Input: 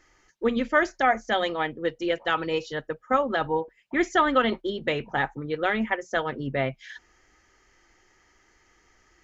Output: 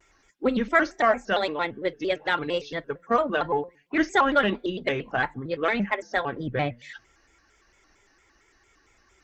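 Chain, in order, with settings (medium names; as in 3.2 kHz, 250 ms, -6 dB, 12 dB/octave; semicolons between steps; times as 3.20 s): coarse spectral quantiser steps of 15 dB; Chebyshev shaper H 7 -37 dB, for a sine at -9.5 dBFS; on a send at -20 dB: reverberation RT60 0.45 s, pre-delay 3 ms; on the sum: vibrato with a chosen wave square 4.4 Hz, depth 160 cents; trim +1 dB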